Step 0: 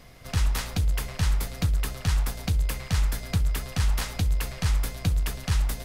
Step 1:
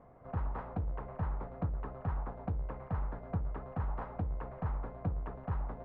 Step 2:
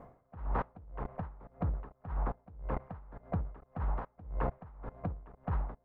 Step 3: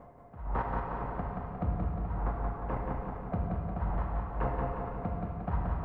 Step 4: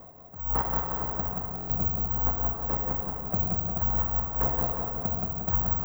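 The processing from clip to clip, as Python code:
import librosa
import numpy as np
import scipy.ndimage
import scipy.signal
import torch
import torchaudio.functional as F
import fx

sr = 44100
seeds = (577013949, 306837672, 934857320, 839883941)

y1 = scipy.signal.sosfilt(scipy.signal.butter(4, 1000.0, 'lowpass', fs=sr, output='sos'), x)
y1 = fx.tilt_eq(y1, sr, slope=3.0)
y2 = fx.level_steps(y1, sr, step_db=22)
y2 = y2 * 10.0 ** (-22 * (0.5 - 0.5 * np.cos(2.0 * np.pi * 1.8 * np.arange(len(y2)) / sr)) / 20.0)
y2 = F.gain(torch.from_numpy(y2), 14.5).numpy()
y3 = fx.echo_feedback(y2, sr, ms=178, feedback_pct=53, wet_db=-4)
y3 = fx.rev_plate(y3, sr, seeds[0], rt60_s=2.4, hf_ratio=1.0, predelay_ms=0, drr_db=-0.5)
y4 = (np.kron(y3[::2], np.eye(2)[0]) * 2)[:len(y3)]
y4 = fx.buffer_glitch(y4, sr, at_s=(1.56,), block=1024, repeats=5)
y4 = F.gain(torch.from_numpy(y4), 1.5).numpy()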